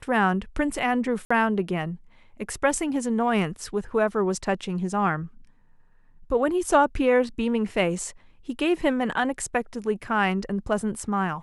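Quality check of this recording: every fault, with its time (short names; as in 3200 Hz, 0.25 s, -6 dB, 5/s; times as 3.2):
1.25–1.3 gap 55 ms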